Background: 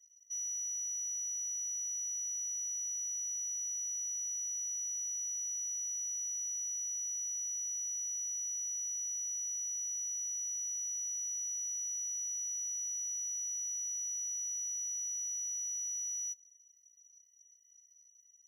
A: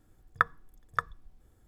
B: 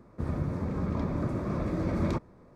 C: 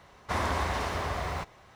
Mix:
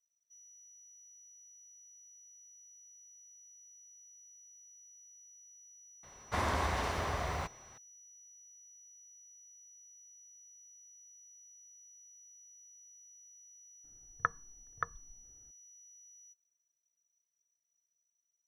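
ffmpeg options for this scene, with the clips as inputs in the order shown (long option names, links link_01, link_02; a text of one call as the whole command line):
ffmpeg -i bed.wav -i cue0.wav -i cue1.wav -i cue2.wav -filter_complex "[0:a]volume=-20dB[link_01];[1:a]lowpass=2000[link_02];[3:a]atrim=end=1.75,asetpts=PTS-STARTPTS,volume=-3.5dB,afade=type=in:duration=0.004:curve=hsin,afade=type=out:start_time=1.746:duration=0.004:curve=hsin,adelay=6030[link_03];[link_02]atrim=end=1.67,asetpts=PTS-STARTPTS,volume=-6dB,afade=type=in:duration=0.004:curve=hsin,afade=type=out:start_time=1.666:duration=0.004:curve=hsin,adelay=13840[link_04];[link_01][link_03][link_04]amix=inputs=3:normalize=0" out.wav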